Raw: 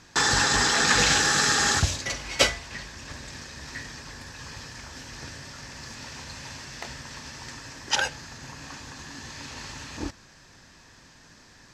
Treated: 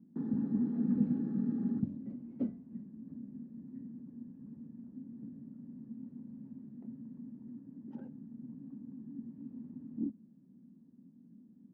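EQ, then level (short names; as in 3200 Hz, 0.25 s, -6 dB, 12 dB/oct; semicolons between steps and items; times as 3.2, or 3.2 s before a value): Butterworth band-pass 220 Hz, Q 2.8; +6.5 dB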